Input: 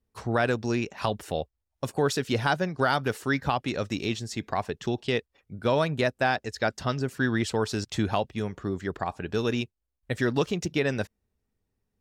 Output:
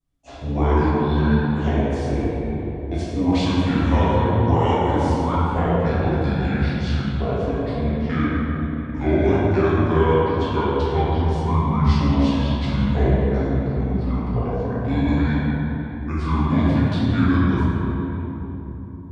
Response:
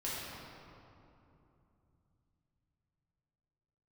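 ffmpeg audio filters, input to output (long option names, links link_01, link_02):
-filter_complex "[0:a]asetrate=27695,aresample=44100[link_01];[1:a]atrim=start_sample=2205,asetrate=32634,aresample=44100[link_02];[link_01][link_02]afir=irnorm=-1:irlink=0,adynamicequalizer=threshold=0.00631:dfrequency=2300:dqfactor=2.4:tfrequency=2300:tqfactor=2.4:attack=5:release=100:ratio=0.375:range=2.5:mode=cutabove:tftype=bell"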